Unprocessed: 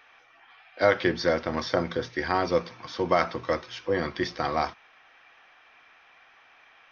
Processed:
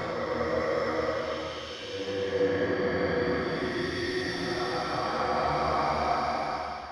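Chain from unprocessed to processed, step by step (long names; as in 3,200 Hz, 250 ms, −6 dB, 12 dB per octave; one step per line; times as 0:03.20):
stylus tracing distortion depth 0.031 ms
extreme stretch with random phases 4.8×, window 0.50 s, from 0:03.36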